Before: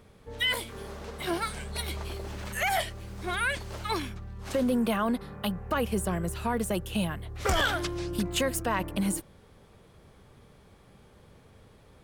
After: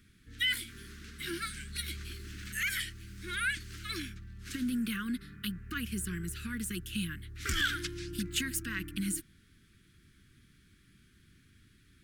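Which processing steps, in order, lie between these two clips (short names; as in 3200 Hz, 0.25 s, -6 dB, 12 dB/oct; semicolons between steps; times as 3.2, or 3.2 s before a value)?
Chebyshev band-stop 320–1500 Hz, order 3; low shelf 440 Hz -4.5 dB; gain -1.5 dB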